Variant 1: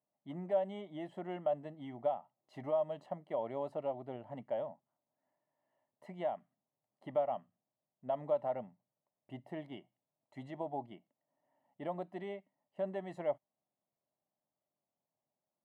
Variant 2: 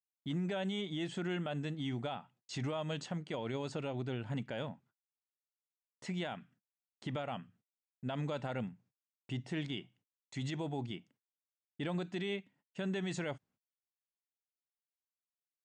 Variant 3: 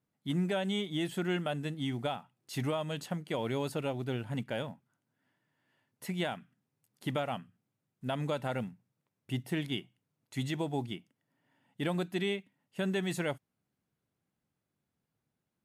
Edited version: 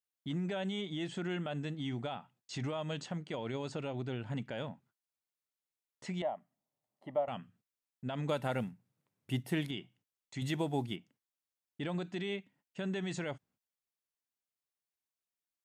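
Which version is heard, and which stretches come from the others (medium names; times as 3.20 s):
2
6.22–7.28 s: from 1
8.29–9.71 s: from 3
10.42–10.96 s: from 3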